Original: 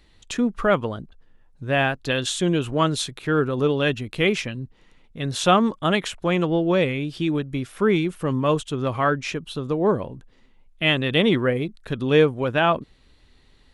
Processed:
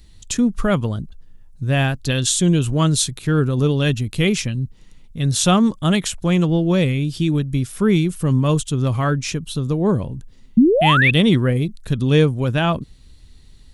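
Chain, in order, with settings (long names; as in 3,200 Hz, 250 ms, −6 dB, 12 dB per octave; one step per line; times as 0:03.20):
sound drawn into the spectrogram rise, 0:10.57–0:11.11, 210–2,700 Hz −14 dBFS
bass and treble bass +14 dB, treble +15 dB
level −2.5 dB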